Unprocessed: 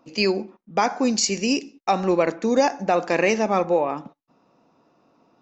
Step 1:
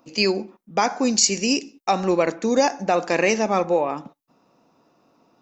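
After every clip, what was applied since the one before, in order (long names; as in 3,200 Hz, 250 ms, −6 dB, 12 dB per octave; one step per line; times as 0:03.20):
high-shelf EQ 6,700 Hz +10.5 dB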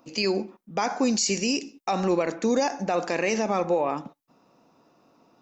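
brickwall limiter −15 dBFS, peak gain reduction 10.5 dB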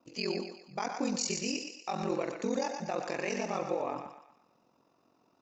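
ring modulation 22 Hz
feedback echo with a high-pass in the loop 120 ms, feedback 45%, high-pass 520 Hz, level −6 dB
level −6.5 dB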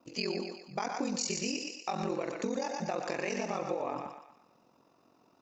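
downward compressor, threshold −33 dBFS, peak gain reduction 6.5 dB
level +3.5 dB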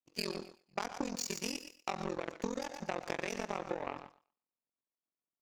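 power curve on the samples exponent 2
level +3 dB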